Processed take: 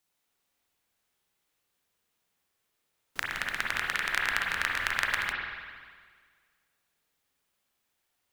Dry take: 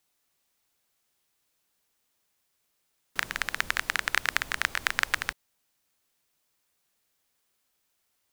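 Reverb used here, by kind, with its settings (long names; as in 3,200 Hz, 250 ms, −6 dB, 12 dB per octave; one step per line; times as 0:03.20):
spring reverb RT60 1.7 s, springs 46/57 ms, chirp 25 ms, DRR −2 dB
level −4.5 dB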